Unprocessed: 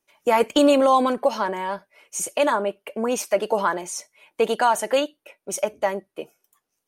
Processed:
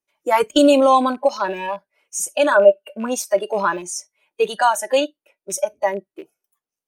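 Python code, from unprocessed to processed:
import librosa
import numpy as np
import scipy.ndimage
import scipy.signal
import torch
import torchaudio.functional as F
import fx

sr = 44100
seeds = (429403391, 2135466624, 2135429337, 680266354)

y = fx.rattle_buzz(x, sr, strikes_db=-39.0, level_db=-24.0)
y = fx.noise_reduce_blind(y, sr, reduce_db=15)
y = fx.small_body(y, sr, hz=(590.0, 1500.0, 2700.0), ring_ms=45, db=14, at=(2.51, 3.06))
y = F.gain(torch.from_numpy(y), 3.5).numpy()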